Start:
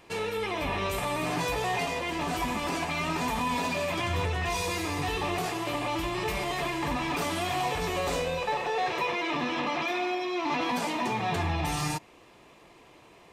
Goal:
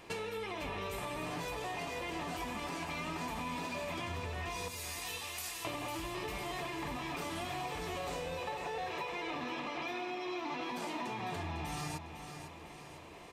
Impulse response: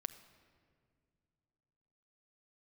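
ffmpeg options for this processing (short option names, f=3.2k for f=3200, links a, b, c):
-filter_complex "[0:a]asettb=1/sr,asplit=3[a][b][c];[a]atrim=end=4.684[d];[b]atrim=start=4.68:end=5.65,asetpts=PTS-STARTPTS,afade=t=in:d=0.004:c=qsin,afade=t=out:st=0.966:d=0.004:c=qsin,aderivative[e];[c]atrim=start=5.646[f];[d][e]acrossfade=d=0.004:c1=hsin:c2=qsin[g];[g][f]acrossfade=d=0.004:c1=qsin:c2=hsin,acompressor=threshold=-38dB:ratio=10,aecho=1:1:502|1004|1506|2008|2510|3012:0.355|0.177|0.0887|0.0444|0.0222|0.0111,volume=1dB"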